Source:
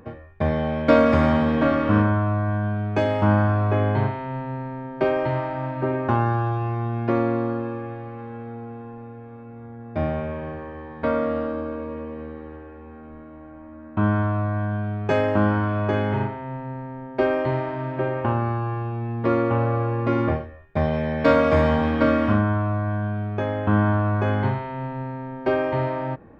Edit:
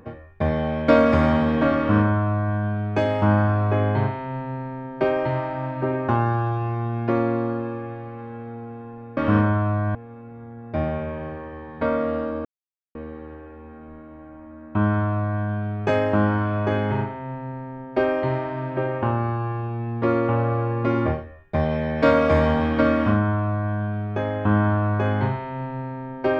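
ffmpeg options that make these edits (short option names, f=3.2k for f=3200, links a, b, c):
-filter_complex "[0:a]asplit=5[a][b][c][d][e];[a]atrim=end=9.172[f];[b]atrim=start=1.778:end=2.562[g];[c]atrim=start=9.168:end=11.67,asetpts=PTS-STARTPTS,afade=t=out:st=2.498:d=0.004:c=hsin[h];[d]atrim=start=11.67:end=12.17,asetpts=PTS-STARTPTS,volume=0[i];[e]atrim=start=12.17,asetpts=PTS-STARTPTS,afade=t=in:d=0.004:c=hsin[j];[f][g]acrossfade=d=0.004:c1=hsin:c2=hsin[k];[h][i][j]concat=n=3:v=0:a=1[l];[k][l]acrossfade=d=0.004:c1=hsin:c2=hsin"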